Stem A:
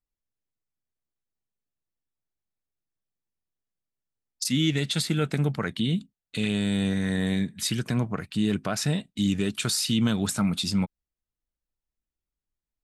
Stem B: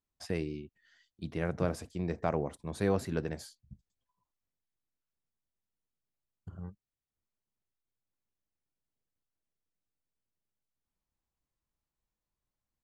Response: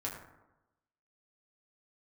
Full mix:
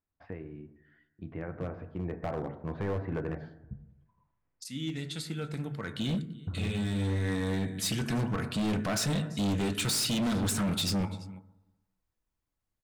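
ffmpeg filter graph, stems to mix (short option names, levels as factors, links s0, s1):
-filter_complex "[0:a]adelay=200,volume=0.841,afade=t=in:st=5.76:d=0.69:silence=0.237137,asplit=3[s0][s1][s2];[s1]volume=0.531[s3];[s2]volume=0.0794[s4];[1:a]acompressor=threshold=0.00562:ratio=2,lowpass=f=2200:w=0.5412,lowpass=f=2200:w=1.3066,dynaudnorm=f=220:g=17:m=2.99,volume=0.75,asplit=3[s5][s6][s7];[s6]volume=0.531[s8];[s7]apad=whole_len=574717[s9];[s0][s9]sidechaincompress=threshold=0.00178:ratio=6:attack=7.7:release=1050[s10];[2:a]atrim=start_sample=2205[s11];[s3][s8]amix=inputs=2:normalize=0[s12];[s12][s11]afir=irnorm=-1:irlink=0[s13];[s4]aecho=0:1:338:1[s14];[s10][s5][s13][s14]amix=inputs=4:normalize=0,volume=21.1,asoftclip=hard,volume=0.0473"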